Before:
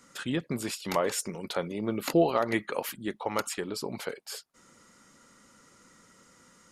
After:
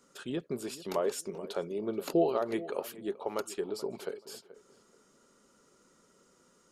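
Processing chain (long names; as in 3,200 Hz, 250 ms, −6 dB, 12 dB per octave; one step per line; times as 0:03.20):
thirty-one-band graphic EQ 100 Hz −9 dB, 400 Hz +12 dB, 630 Hz +5 dB, 2,000 Hz −8 dB
feedback echo with a low-pass in the loop 430 ms, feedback 23%, low-pass 2,000 Hz, level −16 dB
level −7.5 dB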